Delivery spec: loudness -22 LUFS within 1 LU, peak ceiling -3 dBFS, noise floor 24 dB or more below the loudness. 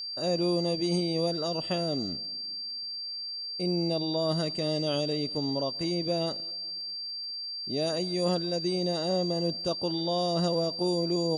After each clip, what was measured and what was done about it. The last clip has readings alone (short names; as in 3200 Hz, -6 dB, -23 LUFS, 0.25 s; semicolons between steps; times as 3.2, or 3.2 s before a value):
ticks 24/s; steady tone 4700 Hz; tone level -34 dBFS; loudness -29.5 LUFS; peak -16.0 dBFS; loudness target -22.0 LUFS
-> de-click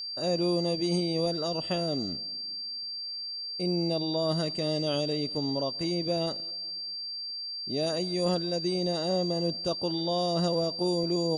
ticks 0/s; steady tone 4700 Hz; tone level -34 dBFS
-> notch 4700 Hz, Q 30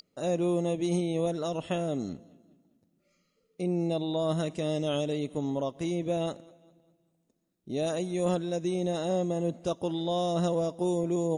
steady tone none; loudness -30.5 LUFS; peak -17.0 dBFS; loudness target -22.0 LUFS
-> gain +8.5 dB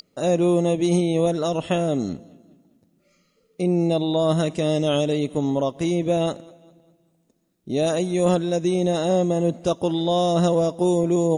loudness -22.0 LUFS; peak -8.5 dBFS; noise floor -66 dBFS